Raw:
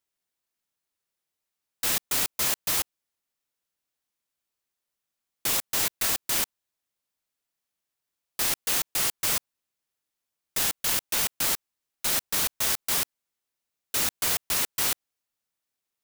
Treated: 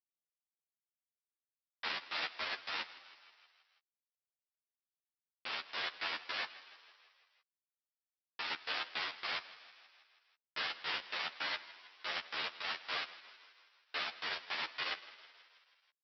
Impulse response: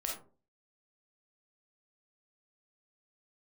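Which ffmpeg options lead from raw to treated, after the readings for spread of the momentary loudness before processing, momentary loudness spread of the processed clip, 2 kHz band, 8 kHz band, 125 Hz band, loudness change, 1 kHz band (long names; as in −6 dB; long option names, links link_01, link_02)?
7 LU, 17 LU, −4.5 dB, −37.5 dB, −22.5 dB, −14.0 dB, −6.0 dB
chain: -filter_complex "[0:a]lowpass=frequency=2900:poles=1,alimiter=level_in=2.5dB:limit=-24dB:level=0:latency=1:release=156,volume=-2.5dB,acontrast=88,aresample=11025,aeval=exprs='val(0)*gte(abs(val(0)),0.0398)':channel_layout=same,aresample=44100,bandpass=frequency=2000:width_type=q:width=0.58:csg=0,asplit=2[link_01][link_02];[link_02]adelay=13,volume=-7.5dB[link_03];[link_01][link_03]amix=inputs=2:normalize=0,asplit=7[link_04][link_05][link_06][link_07][link_08][link_09][link_10];[link_05]adelay=161,afreqshift=47,volume=-16.5dB[link_11];[link_06]adelay=322,afreqshift=94,volume=-20.5dB[link_12];[link_07]adelay=483,afreqshift=141,volume=-24.5dB[link_13];[link_08]adelay=644,afreqshift=188,volume=-28.5dB[link_14];[link_09]adelay=805,afreqshift=235,volume=-32.6dB[link_15];[link_10]adelay=966,afreqshift=282,volume=-36.6dB[link_16];[link_04][link_11][link_12][link_13][link_14][link_15][link_16]amix=inputs=7:normalize=0,asplit=2[link_17][link_18];[link_18]adelay=10.5,afreqshift=-2.1[link_19];[link_17][link_19]amix=inputs=2:normalize=1"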